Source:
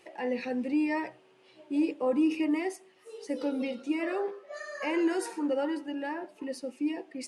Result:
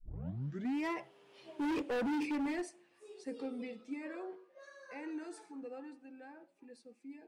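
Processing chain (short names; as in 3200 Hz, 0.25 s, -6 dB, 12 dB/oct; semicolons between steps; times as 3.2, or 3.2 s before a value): tape start at the beginning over 0.93 s; Doppler pass-by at 1.72, 26 m/s, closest 9.9 m; overloaded stage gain 35.5 dB; gain +3 dB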